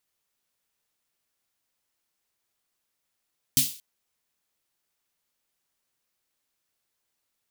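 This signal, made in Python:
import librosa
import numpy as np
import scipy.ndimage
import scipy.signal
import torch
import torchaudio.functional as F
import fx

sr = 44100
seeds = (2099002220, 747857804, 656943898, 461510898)

y = fx.drum_snare(sr, seeds[0], length_s=0.23, hz=140.0, second_hz=260.0, noise_db=9, noise_from_hz=2900.0, decay_s=0.22, noise_decay_s=0.4)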